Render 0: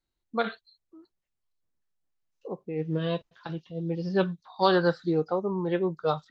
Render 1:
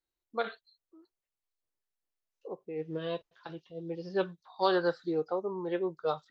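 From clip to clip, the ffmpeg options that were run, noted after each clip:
ffmpeg -i in.wav -af "lowshelf=frequency=290:width_type=q:width=1.5:gain=-6,volume=-5.5dB" out.wav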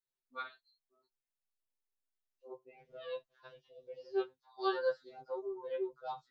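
ffmpeg -i in.wav -af "afftfilt=real='re*2.45*eq(mod(b,6),0)':imag='im*2.45*eq(mod(b,6),0)':win_size=2048:overlap=0.75,volume=-6dB" out.wav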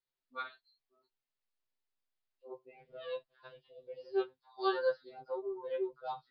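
ffmpeg -i in.wav -af "aresample=11025,aresample=44100,volume=1.5dB" out.wav

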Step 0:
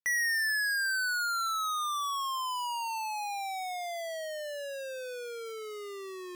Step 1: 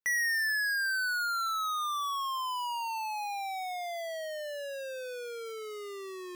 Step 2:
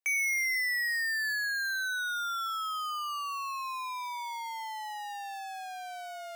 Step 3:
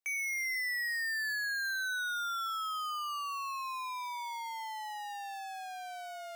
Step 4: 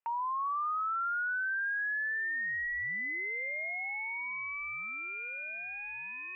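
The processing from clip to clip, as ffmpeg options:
ffmpeg -i in.wav -af "adynamicequalizer=threshold=0.00282:dfrequency=7800:dqfactor=1.2:tfrequency=7800:tqfactor=1.2:attack=5:release=100:ratio=0.375:range=3:mode=cutabove:tftype=bell" out.wav
ffmpeg -i in.wav -af "afreqshift=320" out.wav
ffmpeg -i in.wav -af "alimiter=level_in=3.5dB:limit=-24dB:level=0:latency=1,volume=-3.5dB,volume=-2dB" out.wav
ffmpeg -i in.wav -af "lowpass=frequency=2700:width_type=q:width=0.5098,lowpass=frequency=2700:width_type=q:width=0.6013,lowpass=frequency=2700:width_type=q:width=0.9,lowpass=frequency=2700:width_type=q:width=2.563,afreqshift=-3200,volume=2dB" out.wav

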